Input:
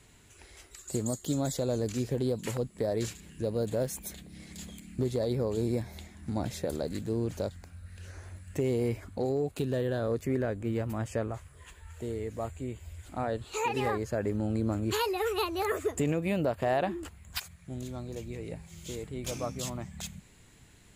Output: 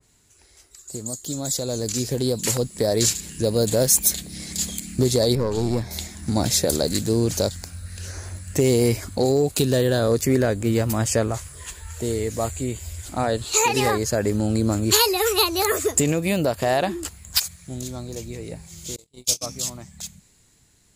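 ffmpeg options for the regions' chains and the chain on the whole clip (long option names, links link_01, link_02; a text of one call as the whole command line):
ffmpeg -i in.wav -filter_complex "[0:a]asettb=1/sr,asplit=3[link_01][link_02][link_03];[link_01]atrim=end=5.354[link_04];[link_02]atrim=start=5.35:end=5.91,asetpts=PTS-STARTPTS,afade=type=in:duration=0.004:curve=qsin,afade=type=out:start_time=0.556:duration=0.004:curve=qsin,lowpass=frequency=2600:poles=1,aeval=exprs='(tanh(17.8*val(0)+0.5)-tanh(0.5))/17.8':channel_layout=same[link_05];[link_03]atrim=start=5.906[link_06];[link_04][link_05]acrossfade=duration=0.004:curve1=hsin:curve2=qsin[link_07];[link_07][link_06]acrossfade=duration=0.004:curve1=qsin:curve2=hsin,asettb=1/sr,asplit=3[link_08][link_09][link_10];[link_08]atrim=end=18.964[link_11];[link_09]atrim=start=18.96:end=19.46,asetpts=PTS-STARTPTS,afade=type=in:duration=0.004:curve=qsin,afade=type=out:start_time=0.496:duration=0.004:curve=qsin,agate=range=-37dB:threshold=-35dB:ratio=16:release=100:detection=peak,highshelf=frequency=2500:width_type=q:width=1.5:gain=9,asplit=2[link_12][link_13];[link_13]adelay=24,volume=-11.5dB[link_14];[link_12][link_14]amix=inputs=2:normalize=0,atrim=end_sample=22050[link_15];[link_10]atrim=start=19.456[link_16];[link_11][link_15]acrossfade=duration=0.004:curve1=hsin:curve2=qsin[link_17];[link_17][link_16]acrossfade=duration=0.004:curve1=qsin:curve2=hsin,highshelf=frequency=3800:width_type=q:width=1.5:gain=6,dynaudnorm=framelen=190:gausssize=21:maxgain=15.5dB,adynamicequalizer=threshold=0.0141:dfrequency=2000:dqfactor=0.7:tfrequency=2000:tqfactor=0.7:attack=5:release=100:ratio=0.375:range=3:mode=boostabove:tftype=highshelf,volume=-4.5dB" out.wav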